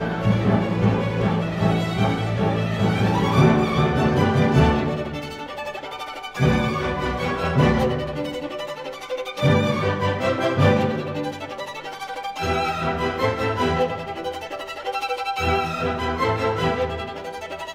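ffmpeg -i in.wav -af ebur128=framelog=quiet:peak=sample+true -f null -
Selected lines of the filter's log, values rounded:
Integrated loudness:
  I:         -22.4 LUFS
  Threshold: -32.4 LUFS
Loudness range:
  LRA:         4.7 LU
  Threshold: -42.4 LUFS
  LRA low:   -24.5 LUFS
  LRA high:  -19.8 LUFS
Sample peak:
  Peak:       -4.7 dBFS
True peak:
  Peak:       -4.7 dBFS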